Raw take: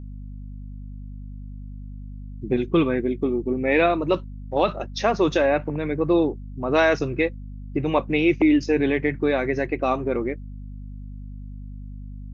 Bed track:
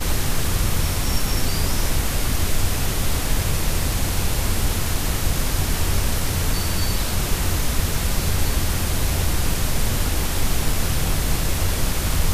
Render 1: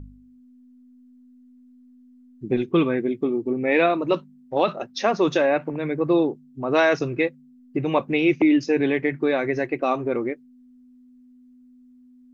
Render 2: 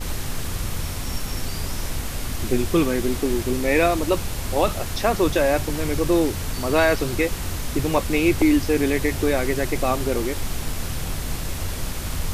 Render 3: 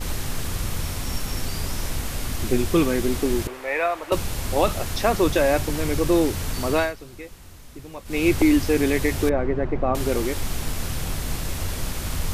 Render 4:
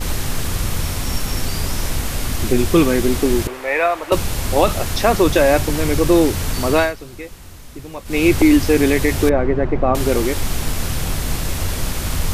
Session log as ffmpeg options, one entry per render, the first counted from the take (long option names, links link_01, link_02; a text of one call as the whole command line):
ffmpeg -i in.wav -af "bandreject=frequency=50:width_type=h:width=4,bandreject=frequency=100:width_type=h:width=4,bandreject=frequency=150:width_type=h:width=4,bandreject=frequency=200:width_type=h:width=4" out.wav
ffmpeg -i in.wav -i bed.wav -filter_complex "[1:a]volume=-6.5dB[link_01];[0:a][link_01]amix=inputs=2:normalize=0" out.wav
ffmpeg -i in.wav -filter_complex "[0:a]asettb=1/sr,asplit=3[link_01][link_02][link_03];[link_01]atrim=end=3.474[link_04];[link_02]atrim=start=3.47:end=4.12,asetpts=PTS-STARTPTS,afade=type=in:duration=0.004:curve=qsin,afade=type=out:start_time=0.646:duration=0.004:curve=qsin,acrossover=split=540 2500:gain=0.0631 1 0.178[link_05][link_06][link_07];[link_05][link_06][link_07]amix=inputs=3:normalize=0[link_08];[link_03]atrim=start=4.116[link_09];[link_04][link_08]acrossfade=duration=0.004:curve1=hsin:curve2=qsin[link_10];[link_10][link_09]acrossfade=duration=0.004:curve1=qsin:curve2=hsin,asettb=1/sr,asplit=3[link_11][link_12][link_13];[link_11]atrim=end=9.294[link_14];[link_12]atrim=start=9.29:end=9.95,asetpts=PTS-STARTPTS,afade=type=in:duration=0.004:curve=qsin,afade=type=out:start_time=0.656:duration=0.004:curve=qsin,lowpass=1200[link_15];[link_13]atrim=start=9.946[link_16];[link_14][link_15]acrossfade=duration=0.004:curve1=hsin:curve2=qsin[link_17];[link_17][link_16]acrossfade=duration=0.004:curve1=qsin:curve2=hsin,asplit=3[link_18][link_19][link_20];[link_18]atrim=end=6.93,asetpts=PTS-STARTPTS,afade=type=out:start_time=6.63:duration=0.3:curve=qsin:silence=0.141254[link_21];[link_19]atrim=start=6.93:end=8.05,asetpts=PTS-STARTPTS,volume=-17dB[link_22];[link_20]atrim=start=8.05,asetpts=PTS-STARTPTS,afade=type=in:duration=0.3:curve=qsin:silence=0.141254[link_23];[link_21][link_22][link_23]concat=n=3:v=0:a=1" out.wav
ffmpeg -i in.wav -af "volume=6dB,alimiter=limit=-3dB:level=0:latency=1" out.wav